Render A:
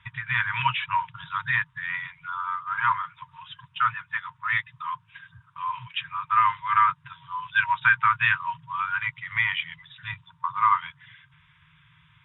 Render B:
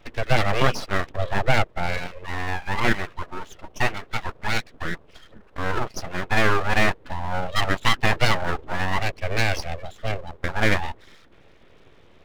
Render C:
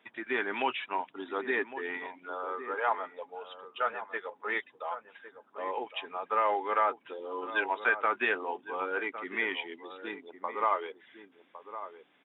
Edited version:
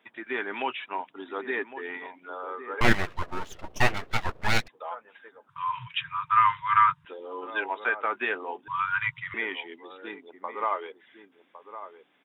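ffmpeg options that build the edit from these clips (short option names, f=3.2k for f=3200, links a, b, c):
-filter_complex "[0:a]asplit=2[a][b];[2:a]asplit=4[c][d][e][f];[c]atrim=end=2.812[g];[1:a]atrim=start=2.808:end=4.682[h];[d]atrim=start=4.678:end=5.492[i];[a]atrim=start=5.488:end=7.052[j];[e]atrim=start=7.048:end=8.682[k];[b]atrim=start=8.678:end=9.342[l];[f]atrim=start=9.338[m];[g][h]acrossfade=d=0.004:c1=hsin:c2=hsin[n];[n][i]acrossfade=d=0.004:c1=hsin:c2=hsin[o];[o][j]acrossfade=d=0.004:c1=hsin:c2=hsin[p];[p][k]acrossfade=d=0.004:c1=hsin:c2=hsin[q];[q][l]acrossfade=d=0.004:c1=hsin:c2=hsin[r];[r][m]acrossfade=d=0.004:c1=hsin:c2=hsin"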